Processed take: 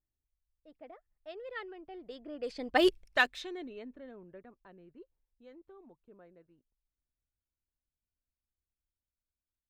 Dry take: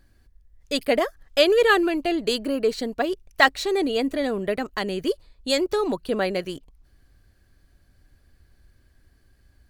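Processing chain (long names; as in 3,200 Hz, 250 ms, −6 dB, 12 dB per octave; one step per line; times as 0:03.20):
source passing by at 0:02.86, 28 m/s, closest 1.5 metres
low-pass that shuts in the quiet parts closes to 1,100 Hz, open at −33 dBFS
dynamic equaliser 2,500 Hz, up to +6 dB, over −53 dBFS, Q 0.82
level +2.5 dB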